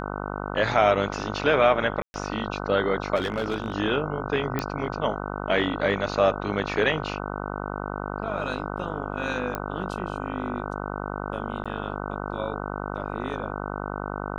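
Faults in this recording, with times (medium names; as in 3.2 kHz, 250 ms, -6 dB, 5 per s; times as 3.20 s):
buzz 50 Hz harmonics 30 -32 dBFS
2.02–2.14 s: dropout 121 ms
3.15–3.74 s: clipped -21 dBFS
4.59 s: pop -12 dBFS
9.55 s: pop -14 dBFS
11.64–11.66 s: dropout 16 ms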